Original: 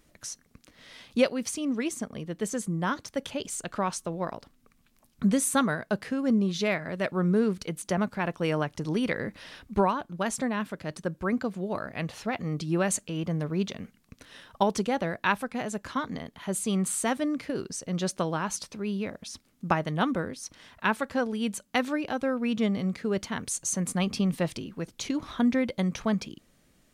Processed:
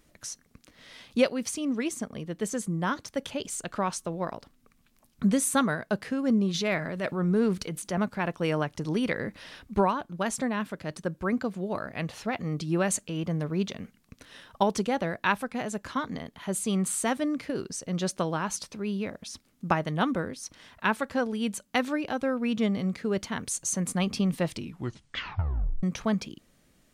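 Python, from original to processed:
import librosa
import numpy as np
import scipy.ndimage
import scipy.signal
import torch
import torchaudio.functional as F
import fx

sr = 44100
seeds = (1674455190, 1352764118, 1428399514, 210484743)

y = fx.transient(x, sr, attack_db=-5, sustain_db=5, at=(6.53, 7.98), fade=0.02)
y = fx.edit(y, sr, fx.tape_stop(start_s=24.52, length_s=1.31), tone=tone)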